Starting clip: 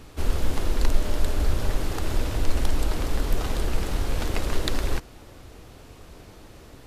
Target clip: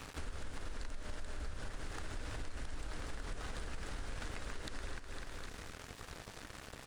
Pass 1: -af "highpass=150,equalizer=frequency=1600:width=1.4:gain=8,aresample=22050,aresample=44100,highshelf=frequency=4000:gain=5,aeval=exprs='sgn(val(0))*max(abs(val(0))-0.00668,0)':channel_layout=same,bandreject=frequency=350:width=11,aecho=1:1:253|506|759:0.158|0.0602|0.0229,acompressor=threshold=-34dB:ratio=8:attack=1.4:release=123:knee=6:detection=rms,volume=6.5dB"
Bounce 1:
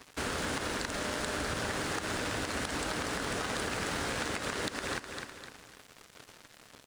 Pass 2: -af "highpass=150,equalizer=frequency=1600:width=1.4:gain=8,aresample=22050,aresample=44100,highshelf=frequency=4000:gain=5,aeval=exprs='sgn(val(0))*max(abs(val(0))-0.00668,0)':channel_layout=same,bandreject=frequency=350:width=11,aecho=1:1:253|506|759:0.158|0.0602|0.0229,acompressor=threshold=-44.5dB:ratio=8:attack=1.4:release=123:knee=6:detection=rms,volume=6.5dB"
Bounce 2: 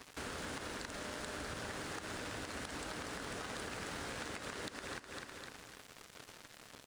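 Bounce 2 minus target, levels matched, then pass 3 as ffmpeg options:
125 Hz band −7.0 dB
-af "equalizer=frequency=1600:width=1.4:gain=8,aresample=22050,aresample=44100,highshelf=frequency=4000:gain=5,aeval=exprs='sgn(val(0))*max(abs(val(0))-0.00668,0)':channel_layout=same,bandreject=frequency=350:width=11,aecho=1:1:253|506|759:0.158|0.0602|0.0229,acompressor=threshold=-44.5dB:ratio=8:attack=1.4:release=123:knee=6:detection=rms,volume=6.5dB"

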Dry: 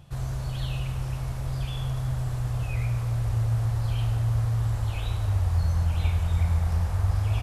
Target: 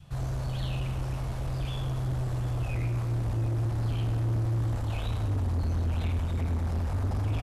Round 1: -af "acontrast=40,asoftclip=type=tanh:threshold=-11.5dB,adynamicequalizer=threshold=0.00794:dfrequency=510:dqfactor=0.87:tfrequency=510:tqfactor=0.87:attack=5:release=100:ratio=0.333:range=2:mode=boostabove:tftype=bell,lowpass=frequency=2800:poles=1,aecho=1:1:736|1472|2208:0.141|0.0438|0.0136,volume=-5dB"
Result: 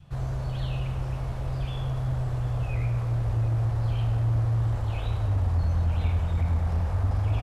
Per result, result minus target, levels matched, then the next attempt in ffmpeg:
soft clipping: distortion −10 dB; 8,000 Hz band −7.0 dB
-af "acontrast=40,asoftclip=type=tanh:threshold=-20dB,adynamicequalizer=threshold=0.00794:dfrequency=510:dqfactor=0.87:tfrequency=510:tqfactor=0.87:attack=5:release=100:ratio=0.333:range=2:mode=boostabove:tftype=bell,lowpass=frequency=2800:poles=1,aecho=1:1:736|1472|2208:0.141|0.0438|0.0136,volume=-5dB"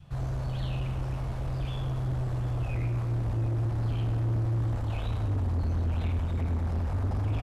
8,000 Hz band −6.5 dB
-af "acontrast=40,asoftclip=type=tanh:threshold=-20dB,adynamicequalizer=threshold=0.00794:dfrequency=510:dqfactor=0.87:tfrequency=510:tqfactor=0.87:attack=5:release=100:ratio=0.333:range=2:mode=boostabove:tftype=bell,lowpass=frequency=8600:poles=1,aecho=1:1:736|1472|2208:0.141|0.0438|0.0136,volume=-5dB"

